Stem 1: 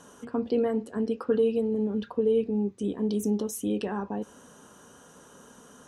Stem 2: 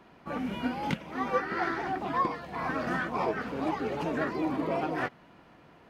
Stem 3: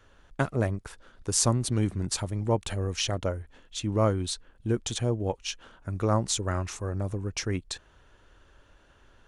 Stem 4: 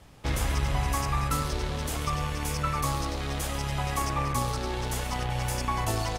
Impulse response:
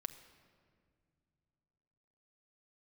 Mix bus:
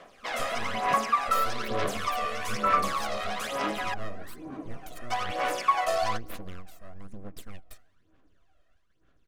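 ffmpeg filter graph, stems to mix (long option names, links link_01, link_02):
-filter_complex "[0:a]volume=-18.5dB[link_01];[1:a]volume=-18dB,asplit=2[link_02][link_03];[link_03]volume=-5.5dB[link_04];[2:a]agate=range=-33dB:threshold=-54dB:ratio=3:detection=peak,aeval=exprs='abs(val(0))':channel_layout=same,volume=-15dB,asplit=2[link_05][link_06];[link_06]volume=-14.5dB[link_07];[3:a]highpass=frequency=510:width=0.5412,highpass=frequency=510:width=1.3066,equalizer=frequency=13000:width_type=o:width=2.1:gain=-14.5,volume=2dB,asplit=3[link_08][link_09][link_10];[link_08]atrim=end=3.94,asetpts=PTS-STARTPTS,afade=type=out:start_time=3.936:duration=0.004:curve=hsin[link_11];[link_09]atrim=start=3.94:end=5.1,asetpts=PTS-STARTPTS,volume=0[link_12];[link_10]atrim=start=5.1,asetpts=PTS-STARTPTS,afade=type=in:duration=0.004:curve=hsin[link_13];[link_11][link_12][link_13]concat=n=3:v=0:a=1,asplit=2[link_14][link_15];[link_15]volume=-7.5dB[link_16];[4:a]atrim=start_sample=2205[link_17];[link_07][link_16]amix=inputs=2:normalize=0[link_18];[link_18][link_17]afir=irnorm=-1:irlink=0[link_19];[link_04]aecho=0:1:915|1830|2745|3660|4575:1|0.39|0.152|0.0593|0.0231[link_20];[link_01][link_02][link_05][link_14][link_19][link_20]amix=inputs=6:normalize=0,aphaser=in_gain=1:out_gain=1:delay=1.6:decay=0.61:speed=1.1:type=sinusoidal,asuperstop=centerf=880:order=8:qfactor=6.8"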